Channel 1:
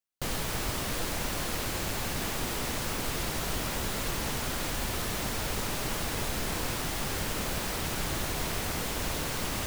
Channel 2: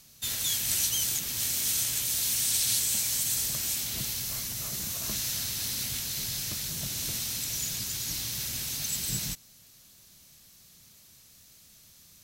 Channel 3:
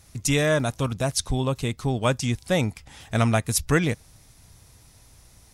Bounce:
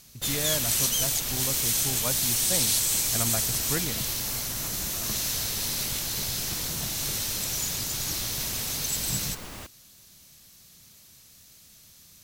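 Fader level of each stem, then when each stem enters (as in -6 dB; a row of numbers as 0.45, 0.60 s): -8.0, +2.5, -11.0 dB; 0.00, 0.00, 0.00 s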